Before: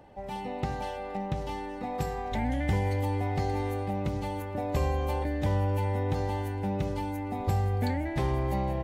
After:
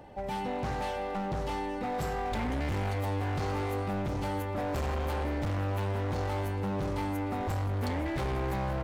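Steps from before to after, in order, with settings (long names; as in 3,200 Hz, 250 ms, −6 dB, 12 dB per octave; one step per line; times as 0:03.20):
hard clipping −33 dBFS, distortion −6 dB
level +3.5 dB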